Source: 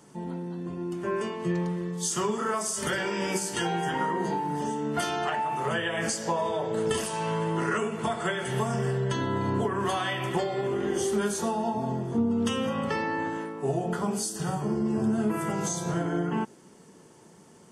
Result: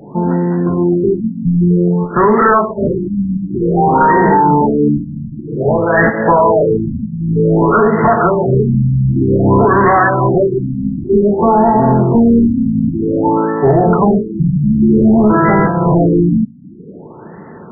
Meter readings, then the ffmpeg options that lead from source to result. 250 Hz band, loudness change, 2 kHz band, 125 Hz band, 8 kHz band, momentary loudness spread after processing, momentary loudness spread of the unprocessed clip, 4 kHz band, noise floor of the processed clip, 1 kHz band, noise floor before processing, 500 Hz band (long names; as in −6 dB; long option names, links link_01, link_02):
+18.0 dB, +16.5 dB, +13.0 dB, +18.5 dB, below −40 dB, 8 LU, 4 LU, below −40 dB, −34 dBFS, +17.0 dB, −53 dBFS, +16.5 dB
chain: -af "apsyclip=25dB,aemphasis=mode=production:type=75fm,afftfilt=real='re*lt(b*sr/1024,270*pow(2100/270,0.5+0.5*sin(2*PI*0.53*pts/sr)))':imag='im*lt(b*sr/1024,270*pow(2100/270,0.5+0.5*sin(2*PI*0.53*pts/sr)))':win_size=1024:overlap=0.75,volume=-3.5dB"